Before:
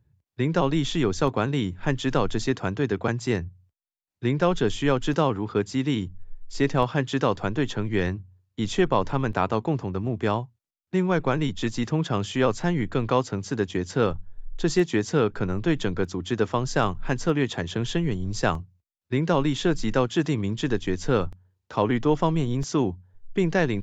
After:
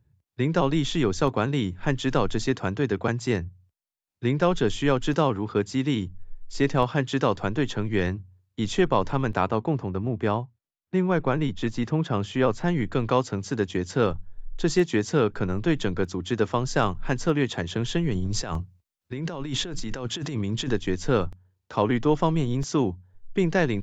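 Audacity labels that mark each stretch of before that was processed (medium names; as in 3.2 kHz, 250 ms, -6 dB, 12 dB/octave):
9.500000	12.680000	treble shelf 4 kHz -9.5 dB
18.130000	20.710000	compressor with a negative ratio -29 dBFS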